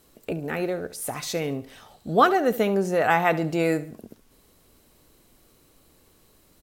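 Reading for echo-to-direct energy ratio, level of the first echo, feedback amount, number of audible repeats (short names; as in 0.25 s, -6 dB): -16.0 dB, -16.5 dB, 37%, 3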